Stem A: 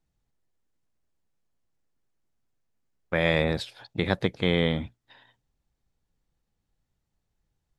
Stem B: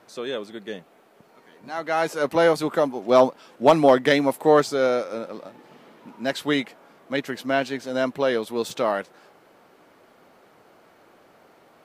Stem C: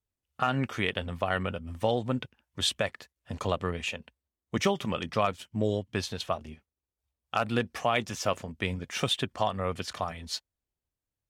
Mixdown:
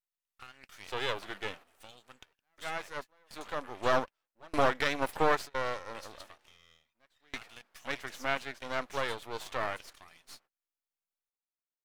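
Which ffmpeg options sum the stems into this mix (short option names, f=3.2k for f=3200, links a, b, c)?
-filter_complex "[0:a]aecho=1:1:1.6:0.97,acompressor=threshold=-36dB:ratio=2,adelay=2050,volume=-16dB[a];[1:a]agate=range=-11dB:threshold=-45dB:ratio=16:detection=peak,lowshelf=f=280:g=-11.5,adelay=750,volume=11dB,afade=t=out:st=1.76:d=0.7:silence=0.223872,afade=t=in:st=3.56:d=0.5:silence=0.266073,afade=t=out:st=5.37:d=0.23:silence=0.473151[b];[2:a]volume=-3.5dB,asplit=2[c][d];[d]apad=whole_len=555635[e];[b][e]sidechaingate=range=-33dB:threshold=-48dB:ratio=16:detection=peak[f];[a][c]amix=inputs=2:normalize=0,aderivative,acompressor=threshold=-47dB:ratio=6,volume=0dB[g];[f][g]amix=inputs=2:normalize=0,aeval=exprs='max(val(0),0)':c=same,equalizer=f=1.7k:w=0.47:g=6,alimiter=limit=-13dB:level=0:latency=1:release=346"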